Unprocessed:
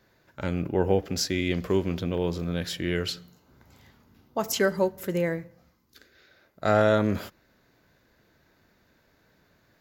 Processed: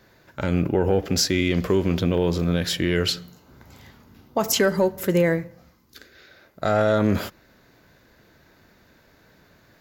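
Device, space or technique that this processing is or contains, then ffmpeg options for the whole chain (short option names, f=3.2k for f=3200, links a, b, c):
soft clipper into limiter: -af "asoftclip=type=tanh:threshold=-10dB,alimiter=limit=-18dB:level=0:latency=1:release=72,volume=8dB"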